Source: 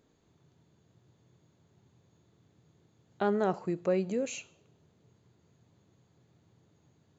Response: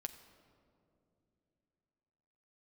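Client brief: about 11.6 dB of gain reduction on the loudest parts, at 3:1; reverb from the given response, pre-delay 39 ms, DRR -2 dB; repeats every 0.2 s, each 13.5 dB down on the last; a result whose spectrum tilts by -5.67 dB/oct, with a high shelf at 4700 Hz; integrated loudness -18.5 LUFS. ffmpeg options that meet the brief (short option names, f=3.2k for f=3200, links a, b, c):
-filter_complex "[0:a]highshelf=f=4.7k:g=-6.5,acompressor=threshold=-40dB:ratio=3,aecho=1:1:200|400:0.211|0.0444,asplit=2[a][b];[1:a]atrim=start_sample=2205,adelay=39[c];[b][c]afir=irnorm=-1:irlink=0,volume=5dB[d];[a][d]amix=inputs=2:normalize=0,volume=20dB"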